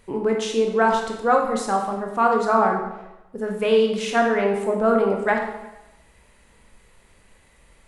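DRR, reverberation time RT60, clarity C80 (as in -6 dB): 1.0 dB, 0.95 s, 6.5 dB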